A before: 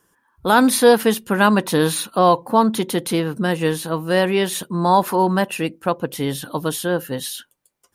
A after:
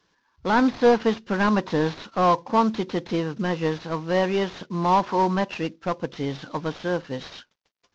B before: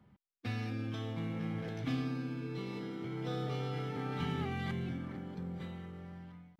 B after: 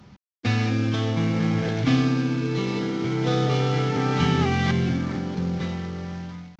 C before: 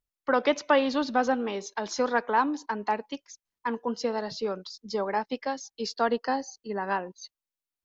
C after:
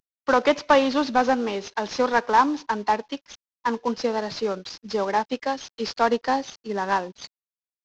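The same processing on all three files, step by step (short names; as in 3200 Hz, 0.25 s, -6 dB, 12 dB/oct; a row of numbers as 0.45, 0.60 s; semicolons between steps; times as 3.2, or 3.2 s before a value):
CVSD 32 kbps; dynamic EQ 1000 Hz, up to +3 dB, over -33 dBFS, Q 2.3; match loudness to -24 LUFS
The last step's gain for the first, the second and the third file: -4.5, +15.0, +4.5 dB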